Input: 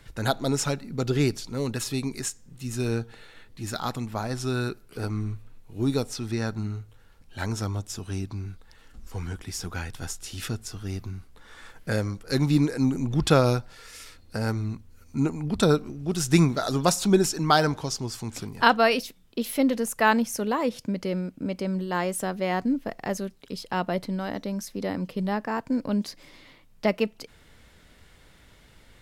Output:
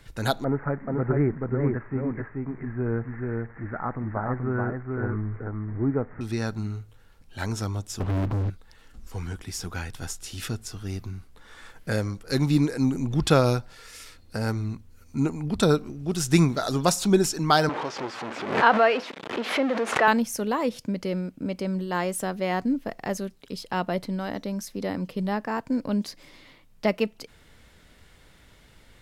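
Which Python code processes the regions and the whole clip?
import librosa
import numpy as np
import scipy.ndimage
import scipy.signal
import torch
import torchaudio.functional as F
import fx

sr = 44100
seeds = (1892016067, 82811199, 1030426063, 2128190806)

y = fx.chain(x, sr, fx.crossing_spikes(level_db=-23.5),
    fx.steep_lowpass(hz=2000.0, slope=72),
    fx.echo_single(ms=432, db=-3.0), at=(0.44, 6.21))
y = fx.chain(y, sr, fx.lowpass(hz=1100.0, slope=12),
    fx.leveller(passes=5), at=(8.0, 8.5))
y = fx.chain(y, sr, fx.zero_step(step_db=-23.0),
    fx.bandpass_edges(low_hz=380.0, high_hz=2100.0),
    fx.pre_swell(db_per_s=89.0), at=(17.69, 20.08))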